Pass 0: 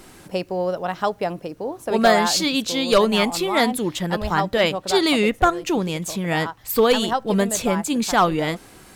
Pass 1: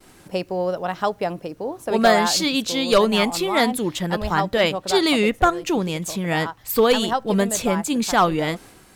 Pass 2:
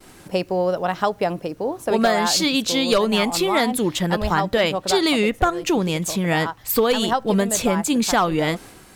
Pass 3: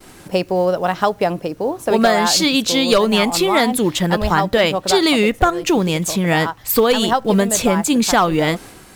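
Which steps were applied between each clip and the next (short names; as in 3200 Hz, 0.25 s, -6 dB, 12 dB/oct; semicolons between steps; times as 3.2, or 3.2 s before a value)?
expander -41 dBFS
compressor, threshold -18 dBFS, peak gain reduction 7.5 dB; gain +3.5 dB
block floating point 7-bit; gain +4 dB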